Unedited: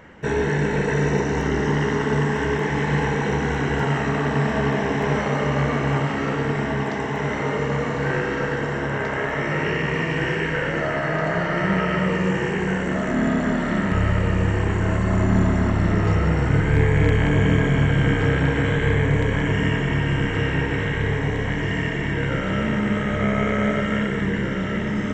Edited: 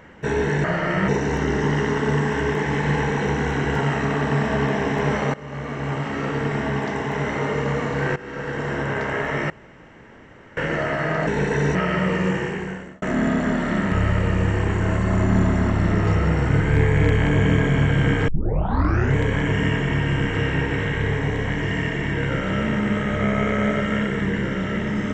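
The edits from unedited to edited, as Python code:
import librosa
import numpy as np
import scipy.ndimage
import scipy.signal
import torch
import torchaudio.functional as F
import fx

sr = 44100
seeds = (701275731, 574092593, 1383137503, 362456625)

y = fx.edit(x, sr, fx.swap(start_s=0.64, length_s=0.48, other_s=11.31, other_length_s=0.44),
    fx.fade_in_from(start_s=5.38, length_s=1.52, curve='qsin', floor_db=-19.5),
    fx.fade_in_from(start_s=8.2, length_s=0.56, floor_db=-17.0),
    fx.room_tone_fill(start_s=9.54, length_s=1.07),
    fx.fade_out_span(start_s=12.28, length_s=0.74),
    fx.tape_start(start_s=18.28, length_s=0.88), tone=tone)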